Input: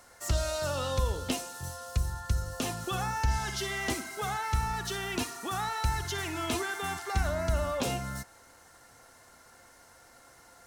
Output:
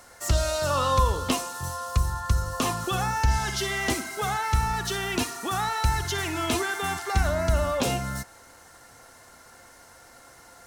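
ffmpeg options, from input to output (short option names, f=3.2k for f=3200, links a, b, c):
-filter_complex "[0:a]asettb=1/sr,asplit=3[a][b][c];[a]atrim=end=0.704[d];[b]atrim=start=0.7:end=2.87,asetpts=PTS-STARTPTS,afade=t=in:d=0.004:c=qsin,afade=t=out:st=2.166:d=0.004:c=qsin,equalizer=f=1.1k:t=o:w=0.29:g=13.5[e];[c]atrim=start=2.866[f];[d][e]acrossfade=d=0.004:c1=hsin:c2=qsin[g];[g][f]acrossfade=d=0.004:c1=qsin:c2=hsin,volume=5.5dB"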